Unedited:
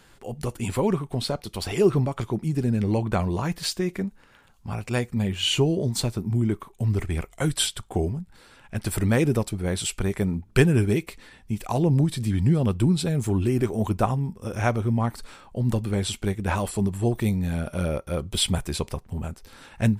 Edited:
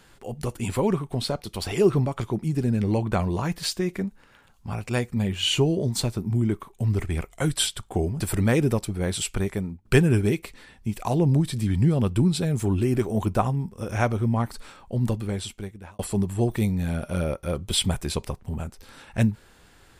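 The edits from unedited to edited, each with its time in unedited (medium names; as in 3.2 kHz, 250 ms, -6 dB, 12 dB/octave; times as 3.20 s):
8.20–8.84 s: delete
10.04–10.49 s: fade out, to -14.5 dB
15.62–16.63 s: fade out linear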